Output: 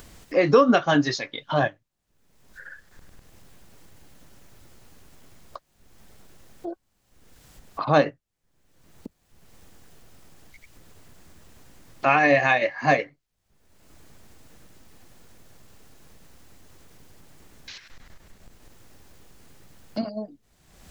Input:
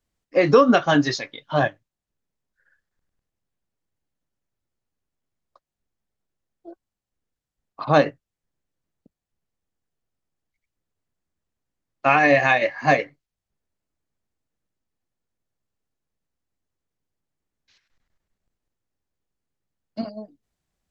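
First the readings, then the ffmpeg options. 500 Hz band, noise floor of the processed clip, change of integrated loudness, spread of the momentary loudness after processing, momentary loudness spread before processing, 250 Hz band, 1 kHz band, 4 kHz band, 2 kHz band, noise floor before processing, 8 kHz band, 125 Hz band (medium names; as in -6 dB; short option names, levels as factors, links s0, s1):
-2.0 dB, -71 dBFS, -3.0 dB, 21 LU, 18 LU, -2.0 dB, -2.0 dB, -1.5 dB, -2.0 dB, under -85 dBFS, no reading, -1.5 dB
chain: -af "acompressor=mode=upward:threshold=0.1:ratio=2.5,volume=0.794"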